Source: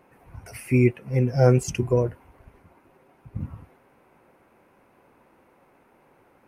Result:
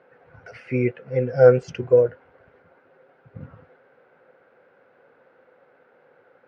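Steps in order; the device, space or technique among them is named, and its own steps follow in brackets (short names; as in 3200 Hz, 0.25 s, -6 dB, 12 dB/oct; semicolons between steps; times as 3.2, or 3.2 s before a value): kitchen radio (speaker cabinet 160–4200 Hz, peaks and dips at 210 Hz -7 dB, 320 Hz -8 dB, 500 Hz +10 dB, 1000 Hz -7 dB, 1500 Hz +9 dB, 2500 Hz -5 dB)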